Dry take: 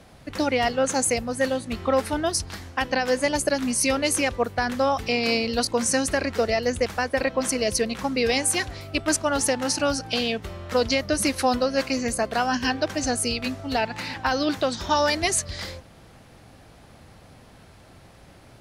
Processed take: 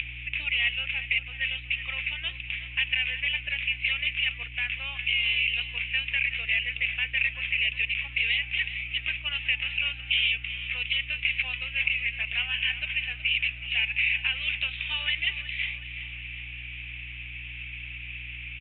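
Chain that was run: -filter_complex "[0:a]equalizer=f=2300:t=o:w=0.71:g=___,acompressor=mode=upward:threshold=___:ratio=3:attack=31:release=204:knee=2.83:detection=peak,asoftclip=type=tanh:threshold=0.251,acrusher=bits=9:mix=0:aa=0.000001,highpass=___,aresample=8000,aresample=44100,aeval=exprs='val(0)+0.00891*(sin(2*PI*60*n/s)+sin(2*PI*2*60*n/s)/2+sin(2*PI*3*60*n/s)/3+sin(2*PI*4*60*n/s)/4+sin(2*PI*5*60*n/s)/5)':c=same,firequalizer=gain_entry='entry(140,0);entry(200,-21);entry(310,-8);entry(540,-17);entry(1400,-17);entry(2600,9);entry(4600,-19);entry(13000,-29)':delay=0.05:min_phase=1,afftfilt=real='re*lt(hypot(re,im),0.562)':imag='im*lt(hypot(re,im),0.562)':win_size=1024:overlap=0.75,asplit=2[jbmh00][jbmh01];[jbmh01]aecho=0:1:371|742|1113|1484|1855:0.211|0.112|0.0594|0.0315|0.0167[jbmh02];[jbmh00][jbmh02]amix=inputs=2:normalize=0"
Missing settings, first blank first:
13, 0.0282, 1400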